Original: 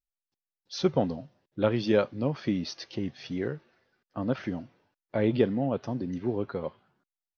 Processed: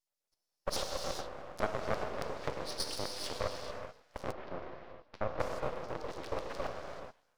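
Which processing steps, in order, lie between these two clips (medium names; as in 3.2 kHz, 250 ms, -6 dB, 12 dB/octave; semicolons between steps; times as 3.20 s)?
cycle switcher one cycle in 3, inverted; low-pass that closes with the level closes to 2 kHz, closed at -25.5 dBFS; 0.70–1.05 s: spectral replace 360–2600 Hz after; compression 6:1, threshold -37 dBFS, peak gain reduction 18 dB; 5.99–6.67 s: phase dispersion lows, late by 78 ms, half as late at 480 Hz; LFO high-pass square 7.2 Hz 570–5000 Hz; gated-style reverb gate 460 ms flat, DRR 1 dB; half-wave rectifier; 4.32–5.40 s: distance through air 280 m; trim +6 dB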